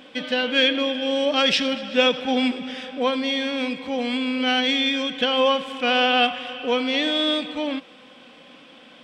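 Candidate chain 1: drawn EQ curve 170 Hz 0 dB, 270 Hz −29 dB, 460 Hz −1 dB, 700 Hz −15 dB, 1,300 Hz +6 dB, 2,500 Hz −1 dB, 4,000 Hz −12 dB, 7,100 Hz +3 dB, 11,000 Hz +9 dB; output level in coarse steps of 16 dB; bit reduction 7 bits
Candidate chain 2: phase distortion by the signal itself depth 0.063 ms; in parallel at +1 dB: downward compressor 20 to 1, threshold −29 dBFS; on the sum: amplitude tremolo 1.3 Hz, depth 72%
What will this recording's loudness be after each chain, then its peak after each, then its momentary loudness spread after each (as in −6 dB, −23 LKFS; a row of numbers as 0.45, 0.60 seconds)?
−32.5, −22.0 LKFS; −20.5, −7.0 dBFS; 6, 11 LU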